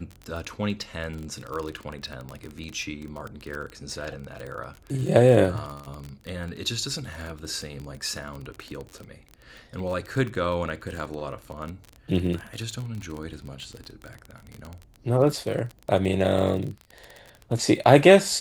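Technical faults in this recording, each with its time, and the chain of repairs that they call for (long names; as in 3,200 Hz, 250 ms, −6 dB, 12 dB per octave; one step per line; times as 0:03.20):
surface crackle 26 per second −30 dBFS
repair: click removal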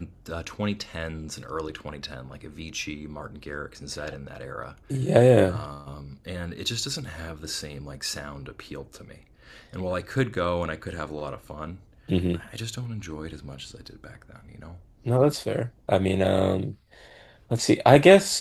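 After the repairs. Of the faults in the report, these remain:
none of them is left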